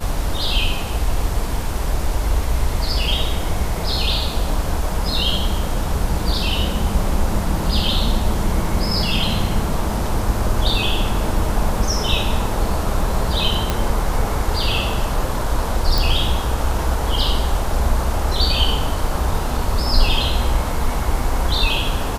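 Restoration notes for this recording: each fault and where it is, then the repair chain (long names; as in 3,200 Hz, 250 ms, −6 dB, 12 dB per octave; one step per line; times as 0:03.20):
0:13.70: click −4 dBFS
0:15.98: click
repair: click removal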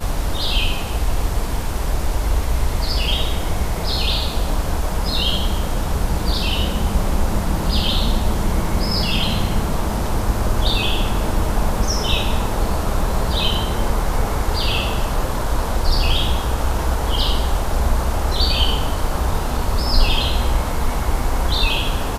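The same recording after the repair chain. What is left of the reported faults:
none of them is left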